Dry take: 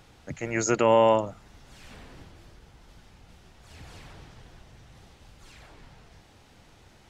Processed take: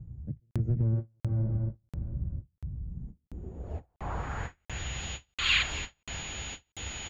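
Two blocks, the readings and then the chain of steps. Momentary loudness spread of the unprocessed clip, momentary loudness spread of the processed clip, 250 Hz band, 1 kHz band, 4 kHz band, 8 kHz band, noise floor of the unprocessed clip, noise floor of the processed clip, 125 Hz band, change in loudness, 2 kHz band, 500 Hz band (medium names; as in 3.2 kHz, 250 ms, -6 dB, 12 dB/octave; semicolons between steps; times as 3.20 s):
19 LU, 15 LU, -6.0 dB, -13.0 dB, +10.0 dB, no reading, -56 dBFS, -80 dBFS, +10.5 dB, -10.0 dB, +4.5 dB, -20.0 dB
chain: one-sided wavefolder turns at -21 dBFS; treble shelf 2.1 kHz +10.5 dB; whistle 6.8 kHz -36 dBFS; feedback delay 232 ms, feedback 51%, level -8.5 dB; low-pass sweep 140 Hz -> 3 kHz, 2.83–4.79 s; peaking EQ 66 Hz +10.5 dB 0.65 oct; on a send: delay 274 ms -6 dB; on the sum: valve stage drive 6 dB, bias 0.35; compression 6:1, threshold -33 dBFS, peak gain reduction 12 dB; time-frequency box 5.35–5.62 s, 1–4.8 kHz +11 dB; crackling interface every 0.69 s, samples 2048, zero, from 0.51 s; endings held to a fixed fall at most 370 dB/s; trim +8.5 dB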